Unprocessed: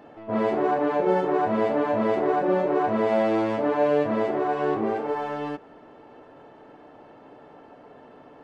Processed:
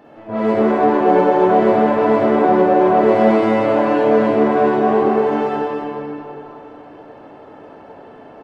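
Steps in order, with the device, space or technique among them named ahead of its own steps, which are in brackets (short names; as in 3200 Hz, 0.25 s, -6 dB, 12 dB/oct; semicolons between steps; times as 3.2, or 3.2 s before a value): cave (echo 0.265 s -8 dB; reverb RT60 3.1 s, pre-delay 42 ms, DRR -5 dB); gain +1.5 dB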